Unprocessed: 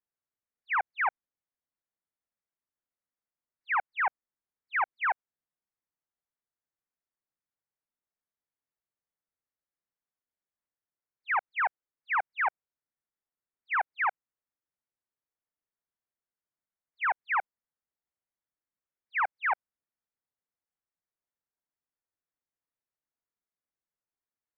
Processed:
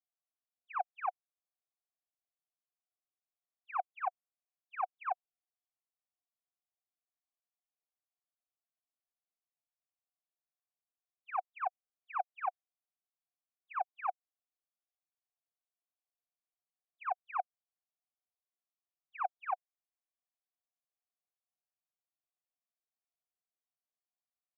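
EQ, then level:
formant filter a
high-frequency loss of the air 270 metres
+2.5 dB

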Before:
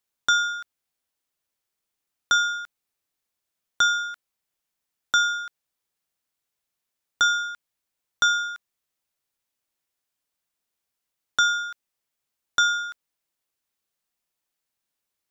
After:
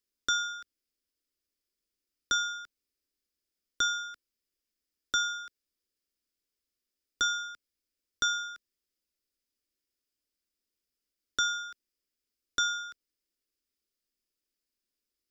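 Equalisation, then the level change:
low-shelf EQ 500 Hz +10 dB
parametric band 5,000 Hz +9.5 dB 0.21 octaves
phaser with its sweep stopped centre 340 Hz, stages 4
−6.0 dB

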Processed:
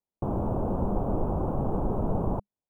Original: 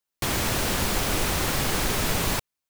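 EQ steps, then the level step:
inverse Chebyshev low-pass filter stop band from 1,800 Hz, stop band 40 dB
parametric band 200 Hz +4.5 dB 0.21 octaves
0.0 dB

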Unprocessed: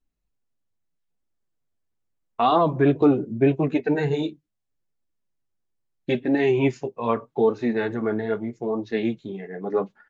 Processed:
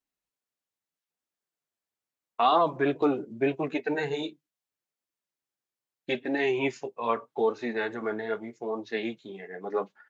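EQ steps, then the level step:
high-pass filter 740 Hz 6 dB per octave
0.0 dB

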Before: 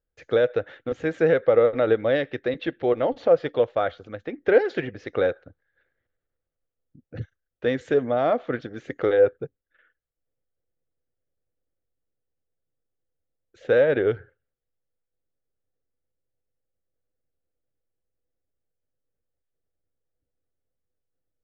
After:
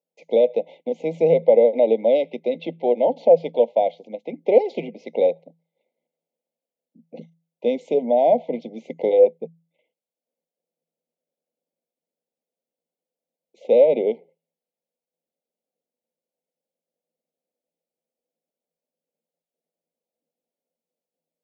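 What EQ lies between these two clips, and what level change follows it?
Chebyshev high-pass with heavy ripple 160 Hz, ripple 9 dB
linear-phase brick-wall band-stop 1,000–2,000 Hz
+6.5 dB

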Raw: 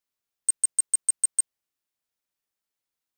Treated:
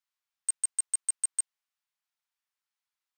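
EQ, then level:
high-pass filter 830 Hz 24 dB per octave
high-shelf EQ 7,100 Hz −10 dB
0.0 dB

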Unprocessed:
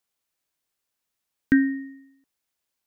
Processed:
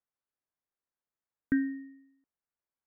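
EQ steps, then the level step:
low-pass filter 1,800 Hz 24 dB per octave
−9.0 dB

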